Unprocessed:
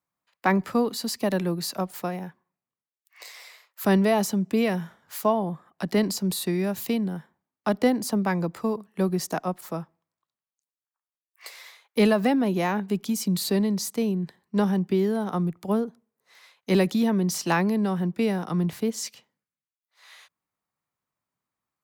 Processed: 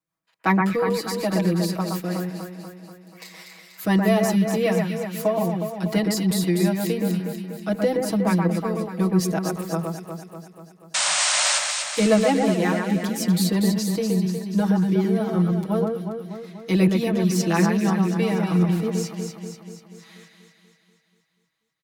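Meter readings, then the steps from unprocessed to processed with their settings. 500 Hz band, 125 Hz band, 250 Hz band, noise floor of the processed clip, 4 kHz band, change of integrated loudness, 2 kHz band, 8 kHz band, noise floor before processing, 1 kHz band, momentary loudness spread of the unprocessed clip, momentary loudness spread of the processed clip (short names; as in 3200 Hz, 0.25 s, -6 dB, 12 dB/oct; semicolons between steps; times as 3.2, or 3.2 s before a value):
+3.0 dB, +6.0 dB, +3.5 dB, -67 dBFS, +7.0 dB, +3.5 dB, +4.5 dB, +8.0 dB, under -85 dBFS, +2.0 dB, 12 LU, 13 LU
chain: comb 6.2 ms, depth 100%; rotary speaker horn 5.5 Hz, later 0.7 Hz, at 17.4; painted sound noise, 10.94–11.59, 540–9300 Hz -22 dBFS; echo with dull and thin repeats by turns 0.121 s, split 2200 Hz, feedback 76%, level -3 dB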